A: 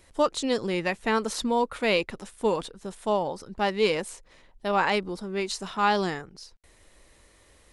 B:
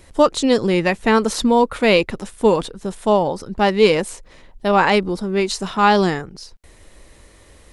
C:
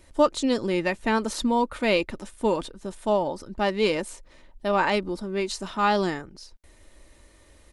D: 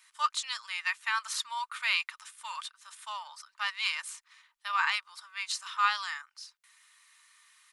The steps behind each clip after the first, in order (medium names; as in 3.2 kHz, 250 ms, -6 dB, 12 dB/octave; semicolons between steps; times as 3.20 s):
bass shelf 470 Hz +5 dB; trim +7.5 dB
comb 3.3 ms, depth 32%; trim -8 dB
elliptic high-pass 1.1 kHz, stop band 60 dB